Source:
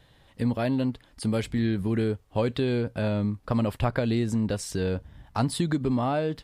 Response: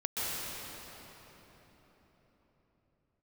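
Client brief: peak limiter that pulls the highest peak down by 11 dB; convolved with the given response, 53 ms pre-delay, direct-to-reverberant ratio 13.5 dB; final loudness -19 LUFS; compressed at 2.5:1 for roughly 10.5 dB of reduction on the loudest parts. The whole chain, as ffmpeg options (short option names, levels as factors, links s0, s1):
-filter_complex "[0:a]acompressor=threshold=0.0141:ratio=2.5,alimiter=level_in=2.51:limit=0.0631:level=0:latency=1,volume=0.398,asplit=2[s0][s1];[1:a]atrim=start_sample=2205,adelay=53[s2];[s1][s2]afir=irnorm=-1:irlink=0,volume=0.0891[s3];[s0][s3]amix=inputs=2:normalize=0,volume=11.9"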